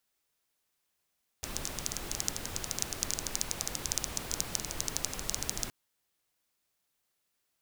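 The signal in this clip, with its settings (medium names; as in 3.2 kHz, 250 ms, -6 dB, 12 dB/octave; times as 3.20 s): rain from filtered ticks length 4.27 s, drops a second 13, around 6.2 kHz, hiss -2 dB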